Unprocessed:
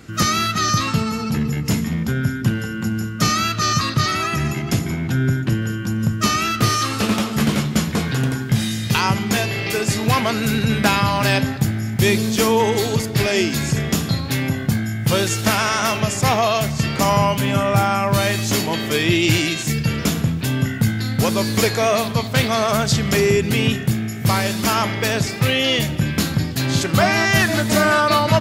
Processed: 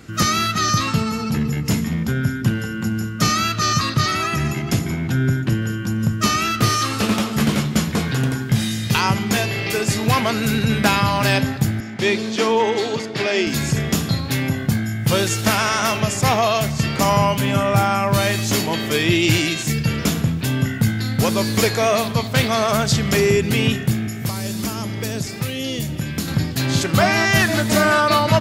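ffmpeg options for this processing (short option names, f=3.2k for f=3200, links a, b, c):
-filter_complex "[0:a]asettb=1/sr,asplit=3[a][b][c];[a]atrim=end=11.804[d];[b]atrim=start=11.8:end=13.47,asetpts=PTS-STARTPTS,afade=t=in:d=0.004:c=qsin,afade=t=out:st=1.666:d=0.004:c=qsin,highpass=250,lowpass=4.8k[e];[c]atrim=start=13.466[f];[d][e]acrossfade=d=0.004:c1=hsin:c2=qsin[g];[g][f]acrossfade=d=0.004:c1=qsin:c2=hsin,asettb=1/sr,asplit=3[h][i][j];[h]atrim=end=24.074[k];[i]atrim=start=24.07:end=26.28,asetpts=PTS-STARTPTS,afade=t=in:d=0.004:c=qsin,afade=t=out:st=2.206:d=0.004:c=qsin,acrossover=split=400|4800[l][m][n];[l]acompressor=threshold=-22dB:ratio=4[o];[m]acompressor=threshold=-34dB:ratio=4[p];[n]acompressor=threshold=-30dB:ratio=4[q];[o][p][q]amix=inputs=3:normalize=0[r];[j]atrim=start=26.276[s];[k][r]acrossfade=d=0.004:c1=hsin:c2=qsin[t];[t][s]acrossfade=d=0.004:c1=qsin:c2=hsin"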